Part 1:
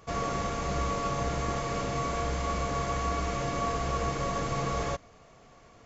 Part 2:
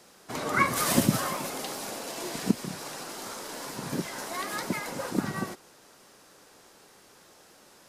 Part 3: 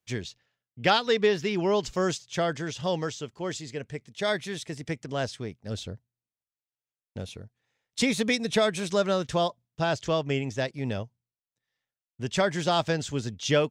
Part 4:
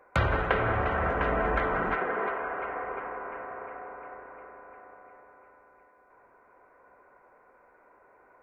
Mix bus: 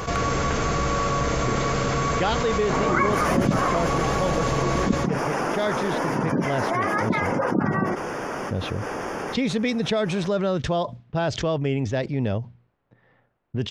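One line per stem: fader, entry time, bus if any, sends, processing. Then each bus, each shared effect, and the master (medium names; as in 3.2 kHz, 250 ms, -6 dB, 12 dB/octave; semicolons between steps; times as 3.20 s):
-5.5 dB, 0.00 s, no send, echo send -4 dB, peaking EQ 770 Hz -3.5 dB
+0.5 dB, 2.40 s, no send, no echo send, spectral gate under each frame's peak -25 dB strong; boxcar filter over 11 samples
-9.5 dB, 1.35 s, no send, no echo send, Bessel low-pass 4 kHz, order 2; level-controlled noise filter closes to 1.3 kHz, open at -25 dBFS; tilt shelf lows +3 dB
-9.5 dB, 0.00 s, no send, no echo send, compression, threshold -32 dBFS, peak gain reduction 11.5 dB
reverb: none
echo: delay 97 ms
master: level flattener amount 70%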